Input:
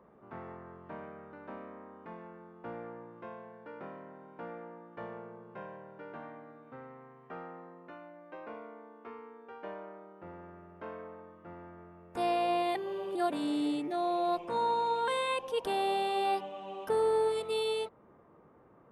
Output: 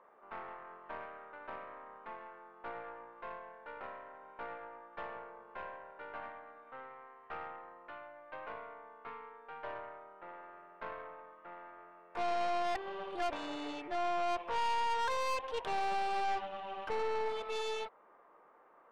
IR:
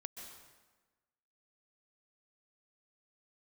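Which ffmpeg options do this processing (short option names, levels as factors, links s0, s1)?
-af "highpass=760,lowpass=2900,aeval=exprs='(tanh(89.1*val(0)+0.65)-tanh(0.65))/89.1':c=same,volume=2.37"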